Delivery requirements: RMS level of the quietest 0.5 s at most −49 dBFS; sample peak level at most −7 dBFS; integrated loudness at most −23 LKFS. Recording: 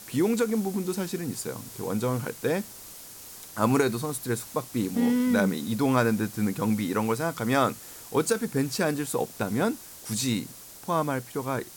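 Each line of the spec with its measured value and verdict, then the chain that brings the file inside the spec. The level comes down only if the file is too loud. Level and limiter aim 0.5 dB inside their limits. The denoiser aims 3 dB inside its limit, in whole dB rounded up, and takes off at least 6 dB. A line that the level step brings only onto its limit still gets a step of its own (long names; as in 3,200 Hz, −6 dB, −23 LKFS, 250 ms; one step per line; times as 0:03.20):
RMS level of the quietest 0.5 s −45 dBFS: out of spec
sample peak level −9.0 dBFS: in spec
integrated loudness −27.5 LKFS: in spec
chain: broadband denoise 7 dB, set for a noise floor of −45 dBFS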